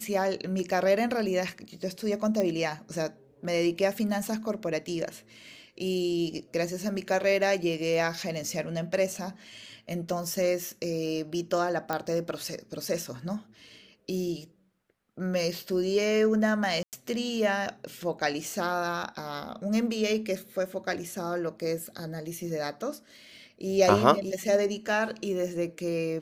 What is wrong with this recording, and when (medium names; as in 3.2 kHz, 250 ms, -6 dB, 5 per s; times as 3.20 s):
2.40 s: pop -17 dBFS
11.93 s: pop -15 dBFS
16.83–16.93 s: dropout 98 ms